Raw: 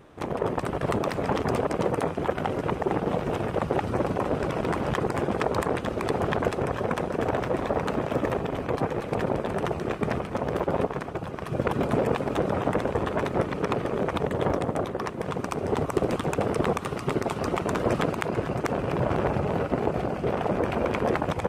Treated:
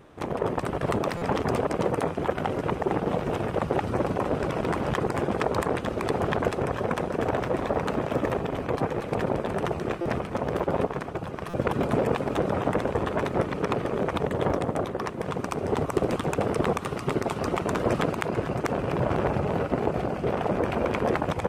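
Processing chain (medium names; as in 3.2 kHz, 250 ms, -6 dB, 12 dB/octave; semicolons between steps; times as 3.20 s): buffer glitch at 1.17/10.01/11.49 s, samples 256, times 7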